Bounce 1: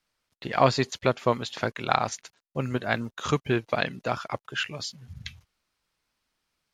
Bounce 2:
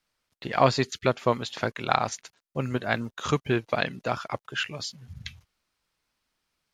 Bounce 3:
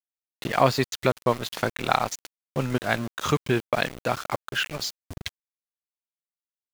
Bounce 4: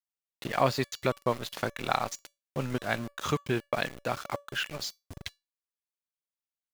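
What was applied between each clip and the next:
spectral selection erased 0.85–1.06 s, 470–1200 Hz
in parallel at +1.5 dB: compression 6:1, threshold -32 dBFS, peak gain reduction 17 dB; on the sum: small samples zeroed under -31 dBFS; trim -1 dB
feedback comb 570 Hz, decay 0.23 s, harmonics all, mix 50%

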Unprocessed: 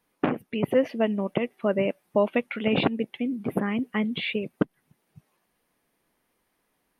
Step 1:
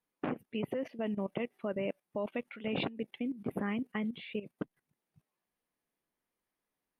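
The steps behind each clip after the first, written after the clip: level held to a coarse grid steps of 14 dB; trim -5.5 dB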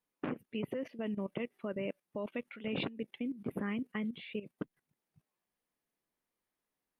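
dynamic bell 750 Hz, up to -6 dB, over -54 dBFS, Q 2.5; trim -1.5 dB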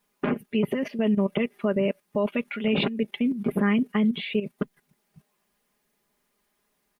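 comb 4.9 ms; in parallel at +2.5 dB: peak limiter -33.5 dBFS, peak gain reduction 10.5 dB; on the sum: trim +6.5 dB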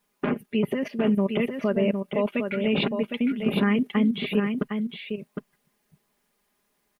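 delay 759 ms -6 dB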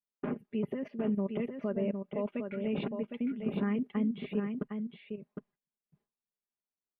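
gate with hold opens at -53 dBFS; low-pass 1 kHz 6 dB/octave; trim -8.5 dB

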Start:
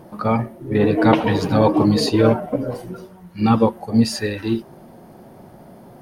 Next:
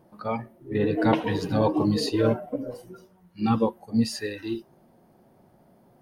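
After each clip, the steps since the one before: spectral noise reduction 8 dB; trim -7 dB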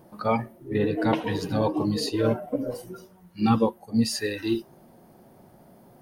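treble shelf 5.9 kHz +6 dB; gain riding within 5 dB 0.5 s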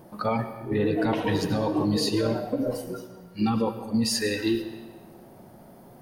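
peak limiter -20 dBFS, peak gain reduction 11 dB; algorithmic reverb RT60 1.4 s, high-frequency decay 0.8×, pre-delay 60 ms, DRR 10 dB; trim +3.5 dB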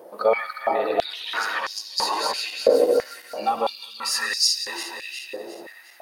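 backward echo that repeats 179 ms, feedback 66%, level -1.5 dB; step-sequenced high-pass 3 Hz 480–5200 Hz; trim +1 dB

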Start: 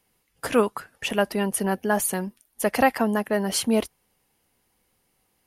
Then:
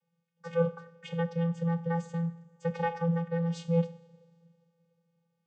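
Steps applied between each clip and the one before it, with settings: two-slope reverb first 0.51 s, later 2.7 s, from -20 dB, DRR 8.5 dB; vocoder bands 16, square 168 Hz; trim -5.5 dB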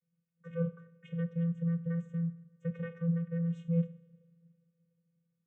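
tilt EQ -2.5 dB/octave; static phaser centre 2 kHz, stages 4; trim -7.5 dB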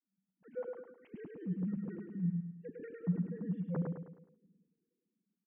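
formants replaced by sine waves; on a send: feedback delay 105 ms, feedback 42%, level -3.5 dB; on the sum: trim -6.5 dB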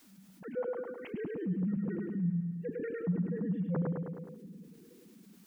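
level flattener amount 50%

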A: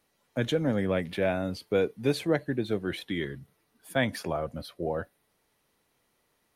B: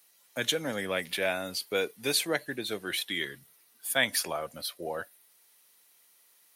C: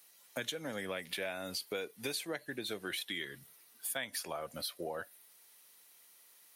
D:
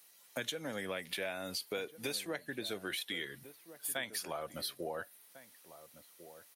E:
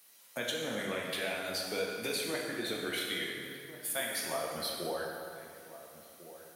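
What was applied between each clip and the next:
tilt EQ +4.5 dB/octave
compression 6:1, threshold -37 dBFS, peak gain reduction 16 dB; trim +1 dB
echo from a far wall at 240 m, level -14 dB
plate-style reverb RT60 2.2 s, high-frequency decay 0.75×, DRR -2.5 dB

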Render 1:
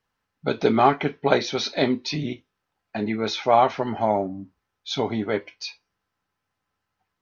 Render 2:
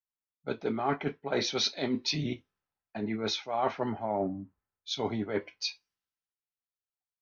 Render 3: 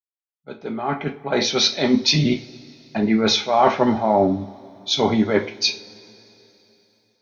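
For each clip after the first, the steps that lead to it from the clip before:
reverse; compression 10:1, threshold -25 dBFS, peak gain reduction 14 dB; reverse; three bands expanded up and down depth 70%; trim -2 dB
fade-in on the opening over 2.24 s; level rider gain up to 8.5 dB; two-slope reverb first 0.33 s, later 3.4 s, from -22 dB, DRR 7 dB; trim +4.5 dB

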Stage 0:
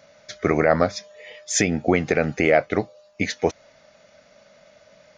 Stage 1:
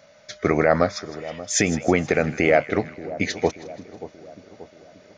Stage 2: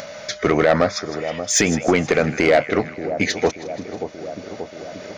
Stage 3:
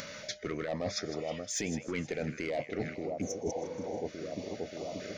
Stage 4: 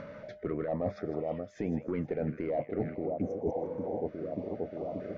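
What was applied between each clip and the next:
two-band feedback delay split 1.1 kHz, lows 582 ms, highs 159 ms, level -15 dB
bass shelf 160 Hz -4.5 dB; in parallel at +1.5 dB: upward compressor, threshold -22 dBFS; on the sum: saturation -6.5 dBFS, distortion -13 dB; trim -1 dB
spectral replace 3.23–4.00 s, 460–5300 Hz after; reverse; compression 10:1, threshold -26 dBFS, peak gain reduction 15 dB; reverse; step-sequenced notch 4.4 Hz 720–1600 Hz; trim -4.5 dB
low-pass 1 kHz 12 dB/octave; trim +3 dB

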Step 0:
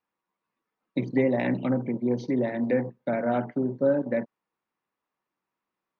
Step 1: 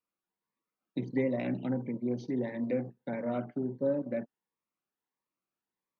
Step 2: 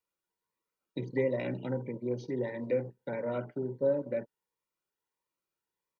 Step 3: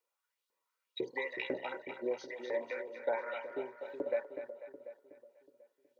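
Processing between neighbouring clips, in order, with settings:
Shepard-style phaser rising 1.5 Hz; trim -6 dB
comb 2.1 ms, depth 51%
LFO high-pass saw up 2 Hz 390–4000 Hz; two-band feedback delay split 500 Hz, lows 369 ms, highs 246 ms, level -9 dB; trim +1 dB

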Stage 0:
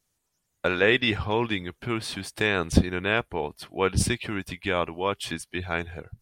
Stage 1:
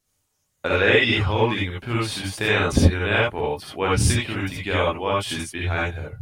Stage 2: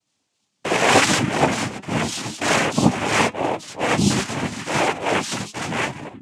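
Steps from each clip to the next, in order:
gated-style reverb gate 100 ms rising, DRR -4.5 dB; trim -1 dB
noise-vocoded speech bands 4; flange 0.84 Hz, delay 3 ms, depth 2.3 ms, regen +86%; trim +6.5 dB

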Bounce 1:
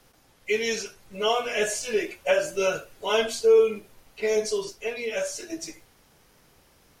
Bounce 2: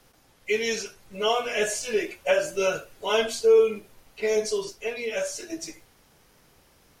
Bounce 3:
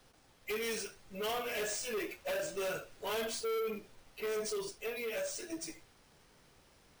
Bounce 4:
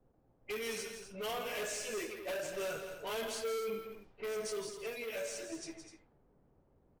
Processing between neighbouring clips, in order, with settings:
no audible change
sample-and-hold 3×; saturation -28 dBFS, distortion -5 dB; trim -5 dB
level-controlled noise filter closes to 490 Hz, open at -36 dBFS; loudspeakers at several distances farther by 57 m -9 dB, 86 m -11 dB; trim -2.5 dB

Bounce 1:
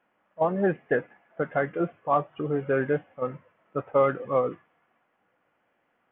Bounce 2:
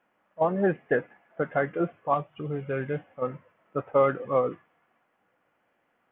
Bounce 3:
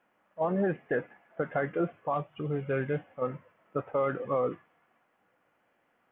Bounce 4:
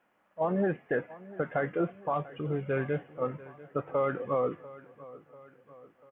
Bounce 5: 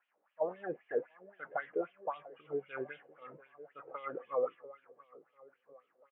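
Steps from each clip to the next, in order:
time-frequency box 2.14–2.98 s, 220–2000 Hz -6 dB
peak limiter -20 dBFS, peak gain reduction 8.5 dB
feedback delay 692 ms, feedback 53%, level -19 dB
wah-wah 3.8 Hz 410–3200 Hz, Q 3.8; trim +1 dB

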